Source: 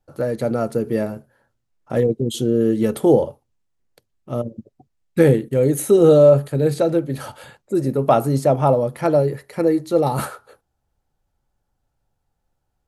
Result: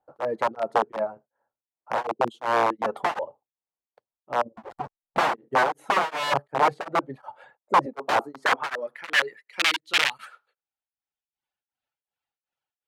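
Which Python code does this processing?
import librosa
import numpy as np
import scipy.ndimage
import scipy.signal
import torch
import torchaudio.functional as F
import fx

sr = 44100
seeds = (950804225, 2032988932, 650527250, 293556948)

y = fx.zero_step(x, sr, step_db=-21.5, at=(4.57, 5.35))
y = fx.highpass(y, sr, hz=190.0, slope=24, at=(7.86, 9.66))
y = fx.dereverb_blind(y, sr, rt60_s=1.1)
y = fx.high_shelf(y, sr, hz=2300.0, db=-6.5)
y = (np.mod(10.0 ** (14.5 / 20.0) * y + 1.0, 2.0) - 1.0) / 10.0 ** (14.5 / 20.0)
y = fx.filter_sweep_bandpass(y, sr, from_hz=840.0, to_hz=2800.0, start_s=8.15, end_s=9.6, q=1.7)
y = y * np.abs(np.cos(np.pi * 2.7 * np.arange(len(y)) / sr))
y = F.gain(torch.from_numpy(y), 7.0).numpy()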